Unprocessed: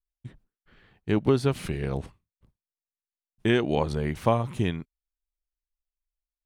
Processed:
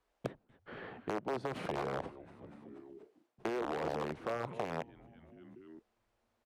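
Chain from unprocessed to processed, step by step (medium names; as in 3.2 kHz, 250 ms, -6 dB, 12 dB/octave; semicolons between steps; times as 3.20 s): reverse; compression 16:1, threshold -30 dBFS, peak gain reduction 16 dB; reverse; peak limiter -29 dBFS, peak gain reduction 9 dB; on a send: frequency-shifting echo 241 ms, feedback 48%, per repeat -120 Hz, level -17.5 dB; on the sum: integer overflow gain 31 dB; band-pass filter 580 Hz, Q 1; three bands compressed up and down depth 70%; trim +7.5 dB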